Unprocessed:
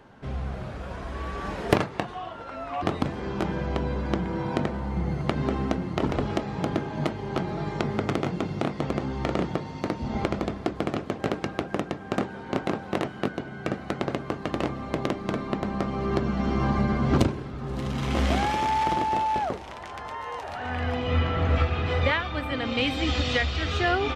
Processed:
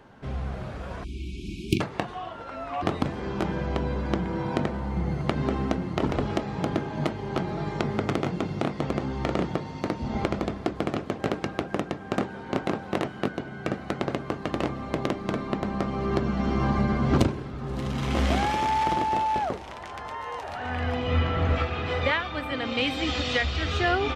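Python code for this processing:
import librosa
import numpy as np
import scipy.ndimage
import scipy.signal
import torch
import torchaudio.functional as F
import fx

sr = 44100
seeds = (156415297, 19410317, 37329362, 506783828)

y = fx.spec_erase(x, sr, start_s=1.04, length_s=0.77, low_hz=390.0, high_hz=2200.0)
y = fx.low_shelf(y, sr, hz=130.0, db=-8.0, at=(21.53, 23.45))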